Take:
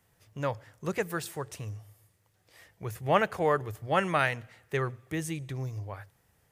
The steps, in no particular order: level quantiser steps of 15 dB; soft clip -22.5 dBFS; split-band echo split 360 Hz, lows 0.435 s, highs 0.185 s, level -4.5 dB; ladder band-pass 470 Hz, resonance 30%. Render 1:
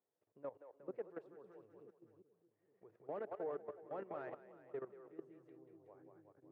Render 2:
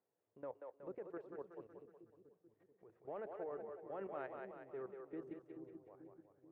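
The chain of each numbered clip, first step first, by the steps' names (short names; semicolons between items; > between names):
soft clip > split-band echo > level quantiser > ladder band-pass; ladder band-pass > soft clip > level quantiser > split-band echo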